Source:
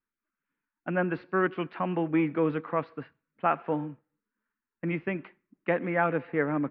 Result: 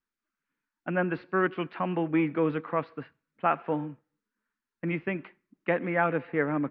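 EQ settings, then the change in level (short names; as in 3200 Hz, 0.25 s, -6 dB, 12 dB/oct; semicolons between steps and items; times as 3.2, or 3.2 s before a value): air absorption 75 m; high shelf 3400 Hz +7 dB; 0.0 dB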